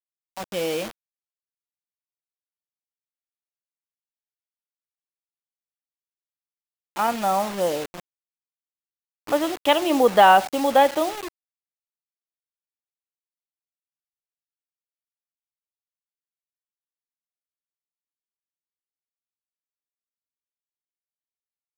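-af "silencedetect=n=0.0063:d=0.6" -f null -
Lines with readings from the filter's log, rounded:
silence_start: 0.91
silence_end: 6.96 | silence_duration: 6.05
silence_start: 8.00
silence_end: 9.27 | silence_duration: 1.28
silence_start: 11.28
silence_end: 21.77 | silence_duration: 10.49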